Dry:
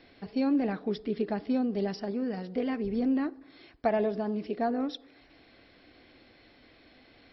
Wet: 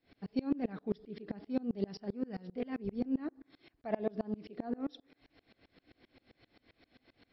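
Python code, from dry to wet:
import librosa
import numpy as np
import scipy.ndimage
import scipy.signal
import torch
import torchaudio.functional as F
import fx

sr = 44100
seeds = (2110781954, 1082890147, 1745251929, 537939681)

y = fx.peak_eq(x, sr, hz=130.0, db=5.0, octaves=1.8)
y = fx.tremolo_decay(y, sr, direction='swelling', hz=7.6, depth_db=28)
y = y * librosa.db_to_amplitude(-1.5)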